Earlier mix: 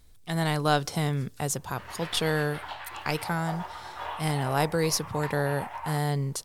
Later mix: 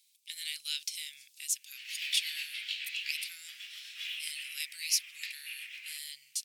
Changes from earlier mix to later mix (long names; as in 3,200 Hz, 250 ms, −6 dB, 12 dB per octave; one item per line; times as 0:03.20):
background +10.0 dB
master: add elliptic high-pass filter 2,400 Hz, stop band 60 dB